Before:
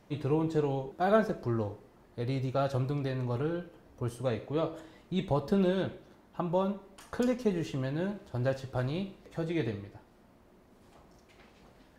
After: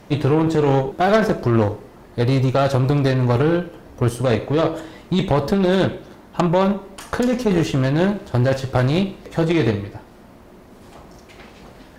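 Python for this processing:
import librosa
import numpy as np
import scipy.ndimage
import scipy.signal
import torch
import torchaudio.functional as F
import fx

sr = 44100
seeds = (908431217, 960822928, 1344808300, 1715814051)

p1 = fx.over_compress(x, sr, threshold_db=-31.0, ratio=-0.5)
p2 = x + (p1 * librosa.db_to_amplitude(1.0))
p3 = fx.cheby_harmonics(p2, sr, harmonics=(6, 8), levels_db=(-15, -16), full_scale_db=-12.5)
y = p3 * librosa.db_to_amplitude(8.0)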